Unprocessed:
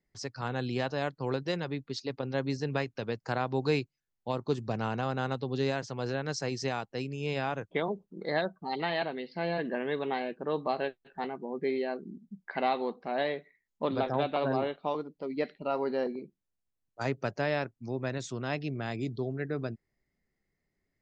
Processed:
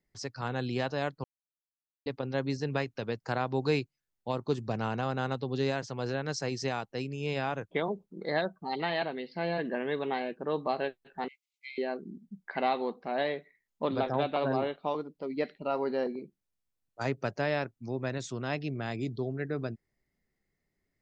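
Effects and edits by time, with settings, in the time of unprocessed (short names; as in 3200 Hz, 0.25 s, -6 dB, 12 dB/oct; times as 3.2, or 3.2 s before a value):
1.24–2.06 mute
11.28–11.78 brick-wall FIR high-pass 2000 Hz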